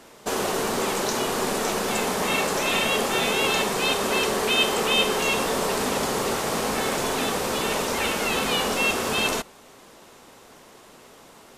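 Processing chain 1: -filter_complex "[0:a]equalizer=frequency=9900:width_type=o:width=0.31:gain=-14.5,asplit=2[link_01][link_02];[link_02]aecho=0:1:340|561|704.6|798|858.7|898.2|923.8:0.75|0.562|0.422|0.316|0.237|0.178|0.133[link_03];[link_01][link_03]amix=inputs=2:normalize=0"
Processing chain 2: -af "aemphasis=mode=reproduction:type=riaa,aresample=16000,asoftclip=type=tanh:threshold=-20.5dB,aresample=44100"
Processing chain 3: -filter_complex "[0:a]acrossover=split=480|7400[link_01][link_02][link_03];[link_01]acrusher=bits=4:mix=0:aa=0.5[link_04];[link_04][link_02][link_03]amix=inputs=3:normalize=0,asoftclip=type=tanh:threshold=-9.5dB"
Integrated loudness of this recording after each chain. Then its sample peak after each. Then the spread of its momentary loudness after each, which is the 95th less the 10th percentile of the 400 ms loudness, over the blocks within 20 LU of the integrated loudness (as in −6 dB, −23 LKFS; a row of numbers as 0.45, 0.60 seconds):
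−20.5, −26.0, −23.5 LKFS; −7.0, −19.0, −11.0 dBFS; 6, 2, 4 LU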